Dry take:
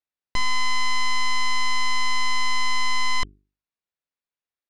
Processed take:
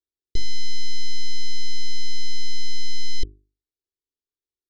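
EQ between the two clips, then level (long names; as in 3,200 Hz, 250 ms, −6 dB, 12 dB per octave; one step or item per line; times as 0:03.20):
elliptic band-stop filter 420–2,600 Hz, stop band 40 dB
high-frequency loss of the air 140 metres
phaser with its sweep stopped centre 700 Hz, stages 6
+7.0 dB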